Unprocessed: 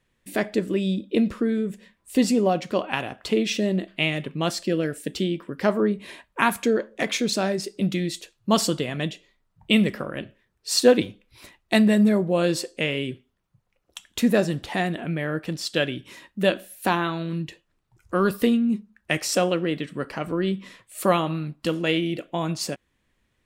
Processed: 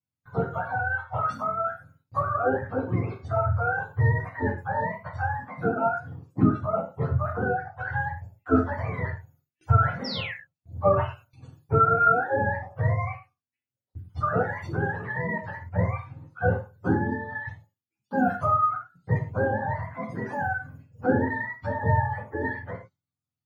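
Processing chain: spectrum mirrored in octaves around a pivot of 540 Hz; gate with hold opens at -49 dBFS; painted sound fall, 10.04–10.34, 1600–5700 Hz -33 dBFS; non-linear reverb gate 0.14 s falling, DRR 1 dB; gain -3.5 dB

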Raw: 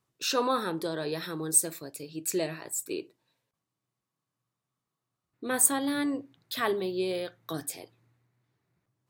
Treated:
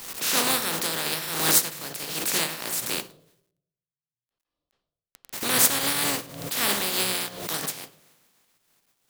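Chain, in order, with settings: spectral contrast lowered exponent 0.19; resonant low shelf 100 Hz -11 dB, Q 1.5; in parallel at -2 dB: compressor, threshold -39 dBFS, peak gain reduction 20 dB; on the sum: notches 60/120/180 Hz; companded quantiser 6-bit; on a send at -11.5 dB: reverb RT60 0.70 s, pre-delay 3 ms; on the sum: backwards sustainer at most 63 dB/s; gain +2.5 dB

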